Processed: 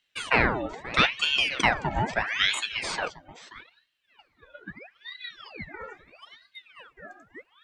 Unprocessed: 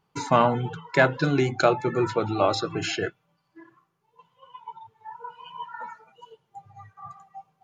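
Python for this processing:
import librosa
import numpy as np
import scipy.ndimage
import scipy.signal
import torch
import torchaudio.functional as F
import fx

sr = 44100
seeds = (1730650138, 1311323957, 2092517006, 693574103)

p1 = fx.low_shelf(x, sr, hz=450.0, db=9.0, at=(4.58, 5.48))
p2 = p1 + fx.echo_single(p1, sr, ms=531, db=-16.0, dry=0)
y = fx.ring_lfo(p2, sr, carrier_hz=1700.0, swing_pct=75, hz=0.77)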